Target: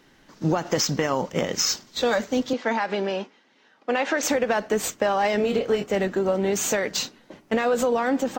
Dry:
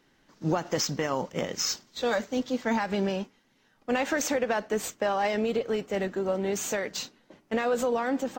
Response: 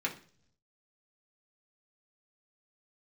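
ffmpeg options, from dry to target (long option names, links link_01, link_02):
-filter_complex "[0:a]acompressor=threshold=-30dB:ratio=2,asettb=1/sr,asplit=3[link_01][link_02][link_03];[link_01]atrim=end=2.534[link_04];[link_02]atrim=start=2.53:end=4.23,asetpts=PTS-STARTPTS,afade=type=in:duration=0.004:curve=qsin,afade=type=out:start_time=1.696:duration=0.004:curve=qsin,highpass=310,lowpass=4800[link_05];[link_03]atrim=start=4.226[link_06];[link_04][link_05]acrossfade=duration=0.004:curve1=hsin:curve2=qsin[link_07];[link_07][link_06]acrossfade=duration=0.004:curve1=qsin:curve2=hsin,asettb=1/sr,asplit=3[link_08][link_09][link_10];[link_08]atrim=end=5.374[link_11];[link_09]atrim=start=5.37:end=5.84,asetpts=PTS-STARTPTS,afade=type=in:duration=0.004:curve=qsin,afade=type=out:start_time=0.466:duration=0.004:curve=qsin,asplit=2[link_12][link_13];[link_13]adelay=25,volume=-6dB[link_14];[link_12][link_14]amix=inputs=2:normalize=0,atrim=end_sample=20727[link_15];[link_10]atrim=start=5.836[link_16];[link_11][link_15]acrossfade=duration=0.004:curve1=hsin:curve2=qsin[link_17];[link_17][link_16]acrossfade=duration=0.004:curve1=qsin:curve2=hsin,volume=8.5dB"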